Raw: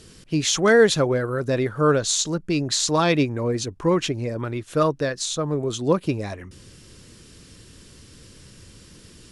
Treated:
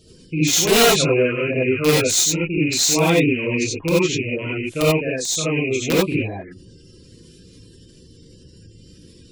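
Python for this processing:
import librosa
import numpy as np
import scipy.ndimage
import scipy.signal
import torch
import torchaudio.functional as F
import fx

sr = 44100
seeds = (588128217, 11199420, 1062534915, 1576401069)

y = fx.rattle_buzz(x, sr, strikes_db=-29.0, level_db=-14.0)
y = fx.spec_gate(y, sr, threshold_db=-20, keep='strong')
y = fx.dynamic_eq(y, sr, hz=6800.0, q=1.2, threshold_db=-37.0, ratio=4.0, max_db=5)
y = (np.mod(10.0 ** (9.5 / 20.0) * y + 1.0, 2.0) - 1.0) / 10.0 ** (9.5 / 20.0)
y = fx.filter_lfo_notch(y, sr, shape='saw_down', hz=9.8, low_hz=840.0, high_hz=1900.0, q=1.8)
y = fx.rev_gated(y, sr, seeds[0], gate_ms=110, shape='rising', drr_db=-6.5)
y = y * librosa.db_to_amplitude(-5.0)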